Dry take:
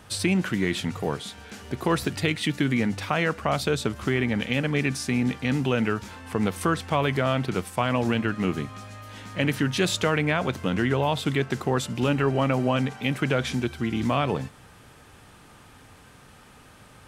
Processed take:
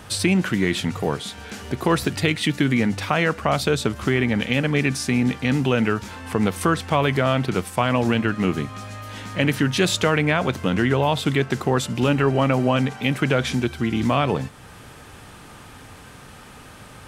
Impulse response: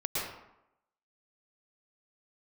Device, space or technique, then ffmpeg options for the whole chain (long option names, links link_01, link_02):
parallel compression: -filter_complex "[0:a]asplit=2[link_01][link_02];[link_02]acompressor=threshold=-42dB:ratio=6,volume=-4dB[link_03];[link_01][link_03]amix=inputs=2:normalize=0,volume=3.5dB"